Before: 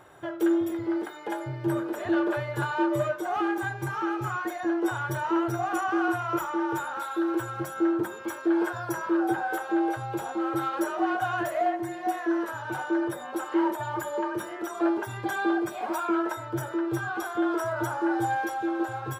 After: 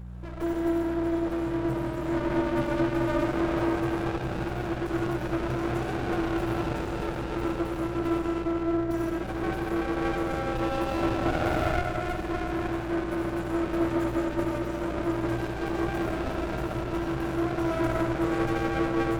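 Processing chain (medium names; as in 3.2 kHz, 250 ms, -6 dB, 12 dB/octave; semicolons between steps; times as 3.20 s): 8.28–8.91 s: inverse Chebyshev low-pass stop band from 1 kHz, stop band 50 dB; reverberation RT60 5.1 s, pre-delay 40 ms, DRR -6.5 dB; mains buzz 60 Hz, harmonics 3, -34 dBFS -4 dB/octave; 11.21–11.79 s: flutter echo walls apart 8 m, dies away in 0.83 s; sliding maximum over 33 samples; trim -5.5 dB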